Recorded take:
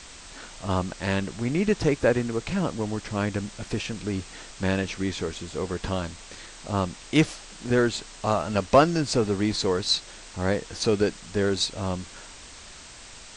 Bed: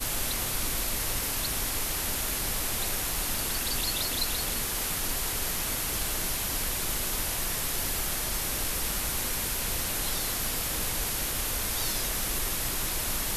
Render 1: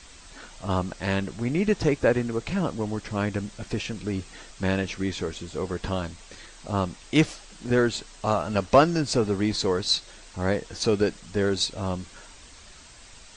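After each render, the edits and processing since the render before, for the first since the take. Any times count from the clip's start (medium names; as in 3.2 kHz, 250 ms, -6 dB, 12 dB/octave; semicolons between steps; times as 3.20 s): noise reduction 6 dB, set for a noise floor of -45 dBFS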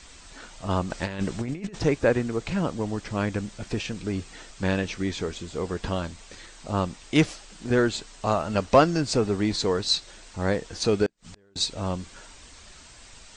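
0.90–1.79 s: compressor with a negative ratio -29 dBFS, ratio -0.5; 11.06–11.56 s: inverted gate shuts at -33 dBFS, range -36 dB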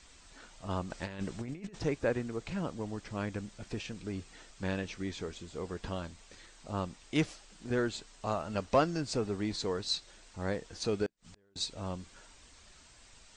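trim -9.5 dB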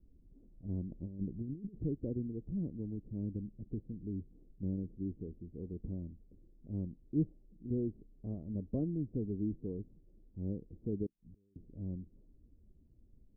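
inverse Chebyshev low-pass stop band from 2 kHz, stop band 80 dB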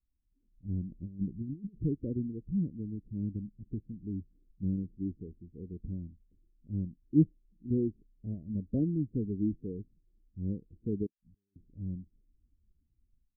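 level rider gain up to 8.5 dB; spectral contrast expander 1.5:1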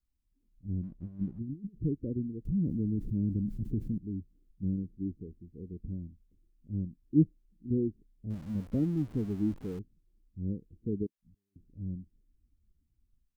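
0.83–1.39 s: hysteresis with a dead band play -57 dBFS; 2.45–3.98 s: level flattener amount 70%; 8.30–9.79 s: jump at every zero crossing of -46 dBFS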